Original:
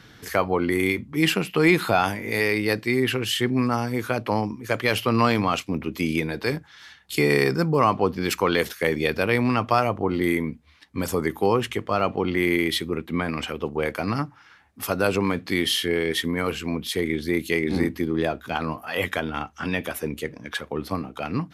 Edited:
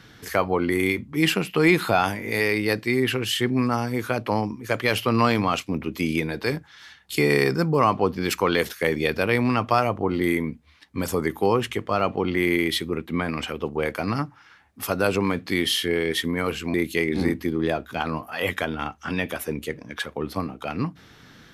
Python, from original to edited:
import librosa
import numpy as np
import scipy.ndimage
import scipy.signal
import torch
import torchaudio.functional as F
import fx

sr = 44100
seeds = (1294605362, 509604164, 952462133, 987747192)

y = fx.edit(x, sr, fx.cut(start_s=16.74, length_s=0.55), tone=tone)